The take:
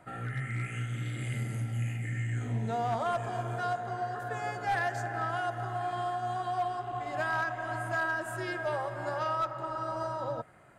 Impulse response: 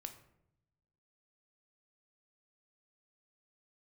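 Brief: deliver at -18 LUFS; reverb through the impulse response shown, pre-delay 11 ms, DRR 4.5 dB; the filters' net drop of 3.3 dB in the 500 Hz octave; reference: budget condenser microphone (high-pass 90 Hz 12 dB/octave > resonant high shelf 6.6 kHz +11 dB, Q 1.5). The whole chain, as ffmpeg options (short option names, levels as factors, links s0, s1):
-filter_complex "[0:a]equalizer=f=500:t=o:g=-5,asplit=2[s0][s1];[1:a]atrim=start_sample=2205,adelay=11[s2];[s1][s2]afir=irnorm=-1:irlink=0,volume=0.944[s3];[s0][s3]amix=inputs=2:normalize=0,highpass=90,highshelf=f=6600:t=q:w=1.5:g=11,volume=5.62"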